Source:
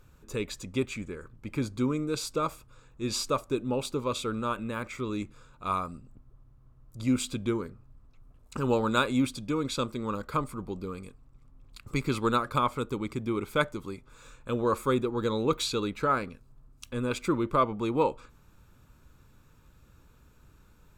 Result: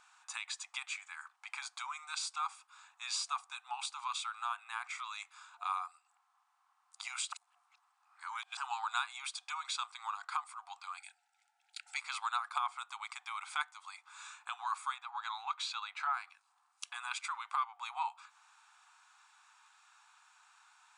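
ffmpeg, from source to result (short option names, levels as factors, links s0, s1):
-filter_complex "[0:a]asettb=1/sr,asplit=3[s0][s1][s2];[s0]atrim=end=10.974[s3];[s1]atrim=start=10.97:end=11.97,asetpts=PTS-STARTPTS,afade=t=in:d=0.004:c=qsin,afade=t=out:st=0.996:d=0.004:c=qsin,asuperstop=centerf=1100:order=12:qfactor=2.6[s4];[s2]atrim=start=11.966[s5];[s3][s4]acrossfade=d=0.004:c1=hsin:c2=qsin[s6];[s6][s5]acrossfade=d=0.004:c1=qsin:c2=hsin,asettb=1/sr,asplit=3[s7][s8][s9];[s7]atrim=end=14.964[s10];[s8]atrim=start=14.96:end=16.14,asetpts=PTS-STARTPTS,afade=t=in:d=0.004:c=qsin,afade=t=out:st=1.176:d=0.004:c=qsin,aemphasis=mode=reproduction:type=50fm[s11];[s9]atrim=start=16.136[s12];[s10][s11]acrossfade=d=0.004:c1=hsin:c2=qsin[s13];[s13][s12]acrossfade=d=0.004:c1=qsin:c2=hsin,asplit=3[s14][s15][s16];[s14]atrim=end=7.322[s17];[s15]atrim=start=7.318:end=8.572,asetpts=PTS-STARTPTS,areverse[s18];[s16]atrim=start=8.568[s19];[s17][s18]acrossfade=d=0.004:c1=hsin:c2=hsin[s20];[s20][s19]acrossfade=d=0.004:c1=hsin:c2=hsin,afftfilt=real='re*between(b*sr/4096,710,10000)':imag='im*between(b*sr/4096,710,10000)':win_size=4096:overlap=0.75,acompressor=threshold=0.00501:ratio=2,volume=1.68"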